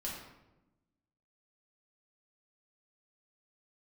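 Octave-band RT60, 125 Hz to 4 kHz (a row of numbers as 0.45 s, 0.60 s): 1.4 s, 1.4 s, 1.1 s, 0.90 s, 0.75 s, 0.60 s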